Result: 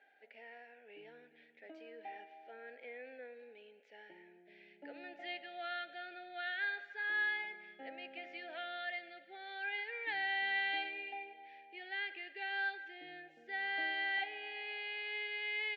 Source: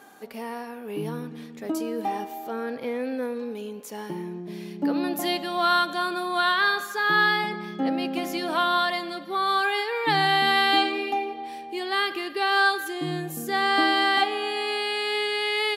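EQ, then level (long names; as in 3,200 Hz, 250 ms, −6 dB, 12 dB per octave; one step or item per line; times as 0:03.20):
Butterworth band-reject 1,100 Hz, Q 0.8
flat-topped band-pass 1,400 Hz, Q 0.96
high-frequency loss of the air 170 metres
−3.5 dB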